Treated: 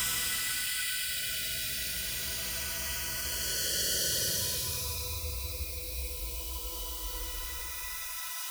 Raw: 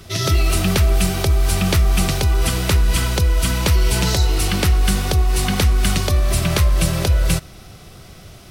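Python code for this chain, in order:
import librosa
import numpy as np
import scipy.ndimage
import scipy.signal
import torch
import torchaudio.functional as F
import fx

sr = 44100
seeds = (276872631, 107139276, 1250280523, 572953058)

p1 = fx.spec_dropout(x, sr, seeds[0], share_pct=24)
p2 = fx.high_shelf(p1, sr, hz=4300.0, db=-9.5)
p3 = fx.quant_dither(p2, sr, seeds[1], bits=6, dither='triangular')
p4 = p2 + F.gain(torch.from_numpy(p3), -10.0).numpy()
p5 = fx.paulstretch(p4, sr, seeds[2], factor=22.0, window_s=0.1, from_s=3.0)
p6 = scipy.signal.lfilter([1.0, -0.97], [1.0], p5)
y = F.gain(torch.from_numpy(p6), 1.0).numpy()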